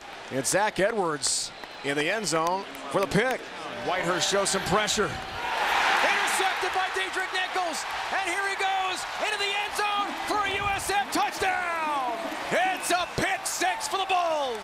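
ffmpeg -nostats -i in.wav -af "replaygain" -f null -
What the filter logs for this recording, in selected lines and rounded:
track_gain = +7.0 dB
track_peak = 0.225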